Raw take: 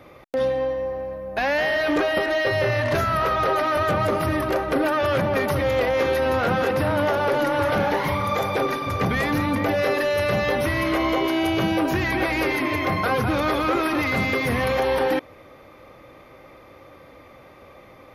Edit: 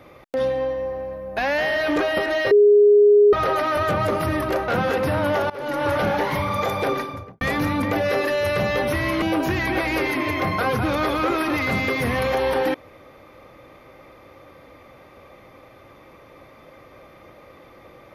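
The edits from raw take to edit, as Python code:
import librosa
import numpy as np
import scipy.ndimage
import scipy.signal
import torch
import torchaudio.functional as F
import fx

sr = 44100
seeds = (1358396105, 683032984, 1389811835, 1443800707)

y = fx.studio_fade_out(x, sr, start_s=8.64, length_s=0.5)
y = fx.edit(y, sr, fx.bleep(start_s=2.51, length_s=0.82, hz=413.0, db=-9.5),
    fx.cut(start_s=4.68, length_s=1.73),
    fx.fade_in_from(start_s=7.23, length_s=0.36, floor_db=-21.5),
    fx.cut(start_s=10.95, length_s=0.72), tone=tone)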